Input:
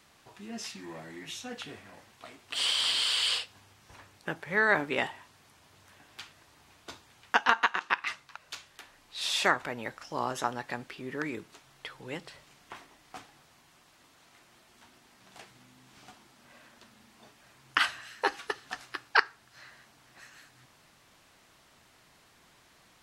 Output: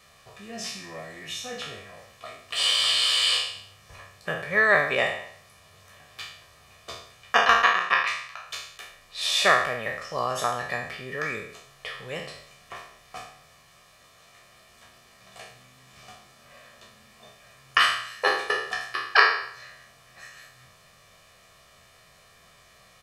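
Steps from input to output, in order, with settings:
peak hold with a decay on every bin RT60 0.66 s
parametric band 2,300 Hz +2.5 dB 0.27 octaves
comb filter 1.7 ms, depth 72%
level +1.5 dB

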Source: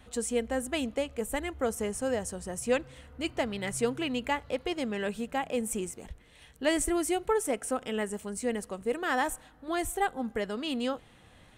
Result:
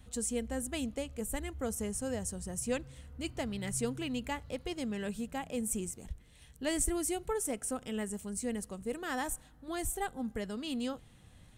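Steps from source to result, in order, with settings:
bass and treble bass +11 dB, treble +9 dB
level −8.5 dB

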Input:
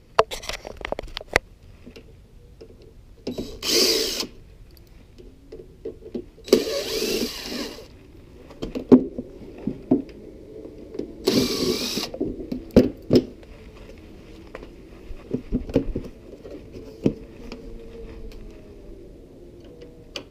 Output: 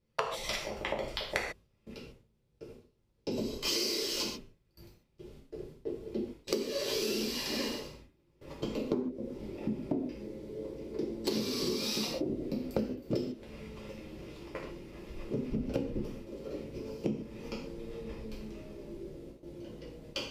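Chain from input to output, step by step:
noise gate with hold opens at −35 dBFS
reverb whose tail is shaped and stops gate 170 ms falling, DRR −5 dB
downward compressor 12 to 1, threshold −21 dBFS, peak gain reduction 18.5 dB
level −8 dB

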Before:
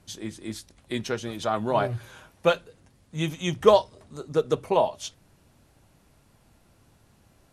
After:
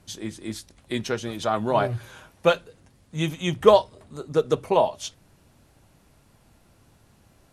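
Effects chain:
0:03.31–0:04.34: parametric band 5,700 Hz −5.5 dB 0.48 octaves
level +2 dB

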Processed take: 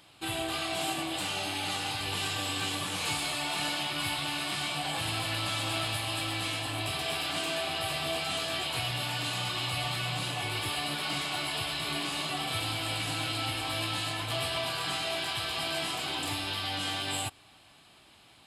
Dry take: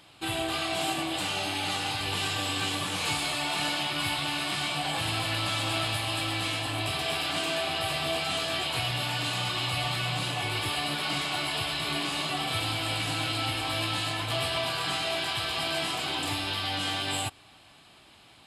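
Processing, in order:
high-shelf EQ 8,600 Hz +4.5 dB
level −3 dB

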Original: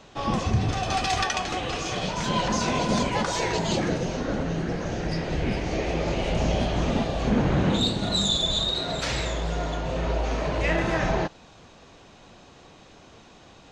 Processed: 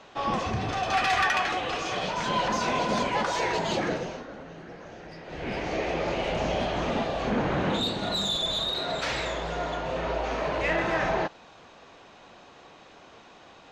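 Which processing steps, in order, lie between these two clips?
0:00.93–0:01.52: parametric band 1,800 Hz +8 dB 1.4 octaves
mid-hump overdrive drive 15 dB, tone 2,100 Hz, clips at −7.5 dBFS
0:03.91–0:05.61: duck −12 dB, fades 0.36 s
level −5.5 dB

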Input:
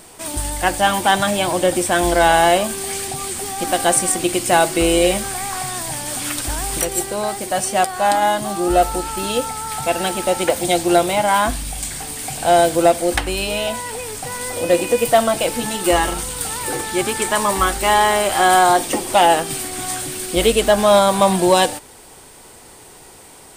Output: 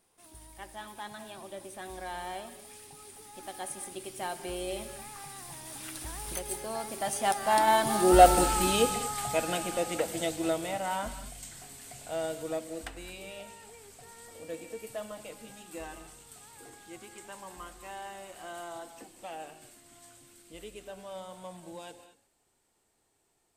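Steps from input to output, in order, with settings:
source passing by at 0:08.33, 23 m/s, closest 9.4 metres
reverb whose tail is shaped and stops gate 250 ms rising, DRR 11.5 dB
level −1.5 dB

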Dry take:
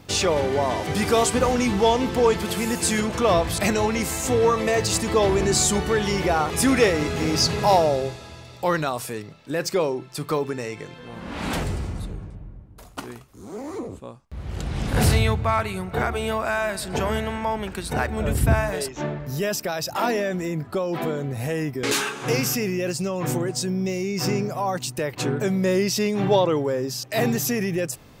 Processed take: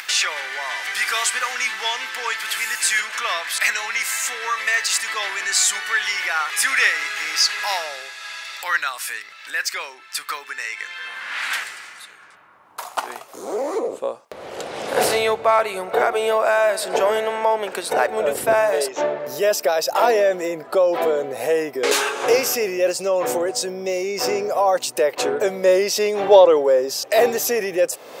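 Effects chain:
upward compression, threshold −22 dBFS
high-pass filter sweep 1,700 Hz → 520 Hz, 0:12.12–0:13.52
level +3 dB

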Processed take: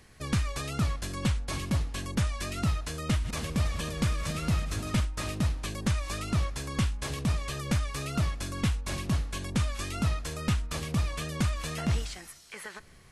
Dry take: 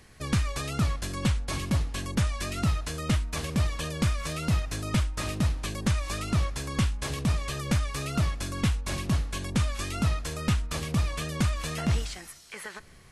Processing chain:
0:03.04–0:05.05: feedback delay that plays each chunk backwards 161 ms, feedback 69%, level −12 dB
level −2 dB

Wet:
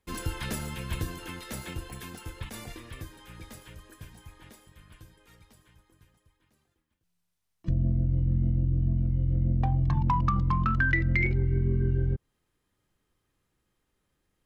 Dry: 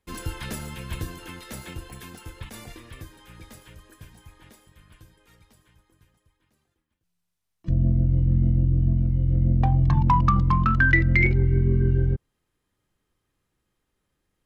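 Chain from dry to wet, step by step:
downward compressor 2.5 to 1, threshold −24 dBFS, peak gain reduction 7.5 dB

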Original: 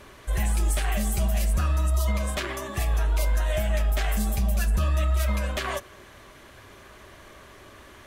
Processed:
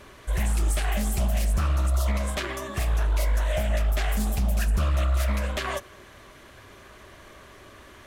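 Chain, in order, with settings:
notch filter 850 Hz, Q 26
highs frequency-modulated by the lows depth 0.35 ms

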